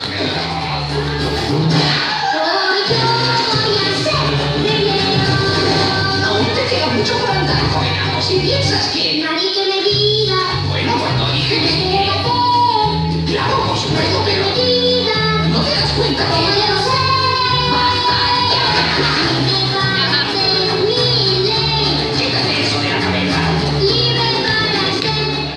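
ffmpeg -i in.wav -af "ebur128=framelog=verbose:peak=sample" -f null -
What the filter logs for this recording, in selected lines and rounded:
Integrated loudness:
  I:         -14.2 LUFS
  Threshold: -24.2 LUFS
Loudness range:
  LRA:         1.5 LU
  Threshold: -34.1 LUFS
  LRA low:   -14.7 LUFS
  LRA high:  -13.1 LUFS
Sample peak:
  Peak:       -2.6 dBFS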